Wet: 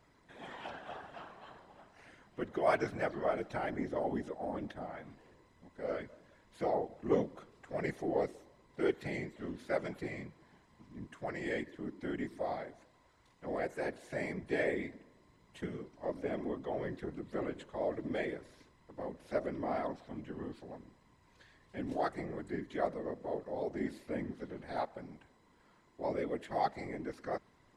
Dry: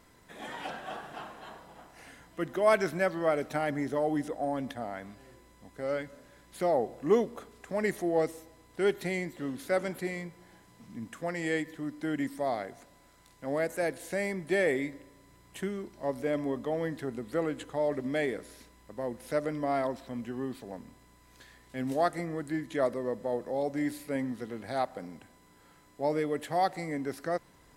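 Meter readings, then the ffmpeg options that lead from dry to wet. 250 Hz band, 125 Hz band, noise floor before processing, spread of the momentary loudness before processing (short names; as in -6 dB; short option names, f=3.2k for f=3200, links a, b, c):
-6.0 dB, -5.0 dB, -60 dBFS, 16 LU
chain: -af "adynamicsmooth=sensitivity=1.5:basefreq=6.3k,afftfilt=real='hypot(re,im)*cos(2*PI*random(0))':imag='hypot(re,im)*sin(2*PI*random(1))':win_size=512:overlap=0.75"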